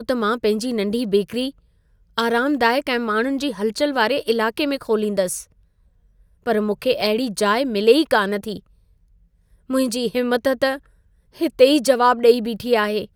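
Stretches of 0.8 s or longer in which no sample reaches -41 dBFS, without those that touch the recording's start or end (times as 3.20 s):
5.44–6.46 s
8.60–9.69 s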